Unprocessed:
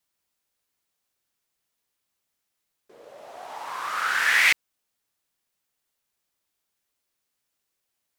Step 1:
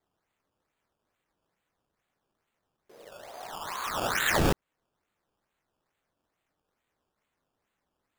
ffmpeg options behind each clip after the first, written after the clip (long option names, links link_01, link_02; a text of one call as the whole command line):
ffmpeg -i in.wav -filter_complex "[0:a]asplit=2[link_01][link_02];[link_02]acompressor=threshold=-30dB:ratio=6,volume=-3dB[link_03];[link_01][link_03]amix=inputs=2:normalize=0,acrusher=samples=15:mix=1:aa=0.000001:lfo=1:lforange=15:lforate=2.3,volume=-6.5dB" out.wav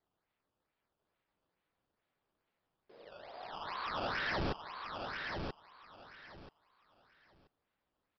ffmpeg -i in.wav -af "aresample=11025,asoftclip=type=hard:threshold=-28dB,aresample=44100,aecho=1:1:982|1964|2946:0.562|0.118|0.0248,volume=-5dB" out.wav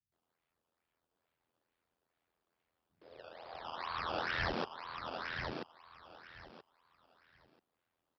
ffmpeg -i in.wav -filter_complex "[0:a]aeval=exprs='val(0)*sin(2*PI*42*n/s)':channel_layout=same,highpass=48,acrossover=split=160[link_01][link_02];[link_02]adelay=120[link_03];[link_01][link_03]amix=inputs=2:normalize=0,volume=3dB" out.wav